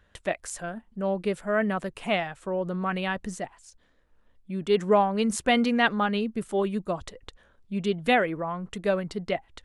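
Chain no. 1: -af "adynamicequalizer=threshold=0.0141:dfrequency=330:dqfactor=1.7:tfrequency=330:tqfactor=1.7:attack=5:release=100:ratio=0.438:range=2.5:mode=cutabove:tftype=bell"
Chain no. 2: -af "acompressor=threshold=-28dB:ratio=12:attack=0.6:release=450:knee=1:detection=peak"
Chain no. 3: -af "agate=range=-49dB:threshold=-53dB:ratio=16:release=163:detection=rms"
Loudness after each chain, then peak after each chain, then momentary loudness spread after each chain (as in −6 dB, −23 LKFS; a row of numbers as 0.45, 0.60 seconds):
−28.0, −36.5, −27.5 LKFS; −8.5, −21.0, −8.5 dBFS; 12, 6, 12 LU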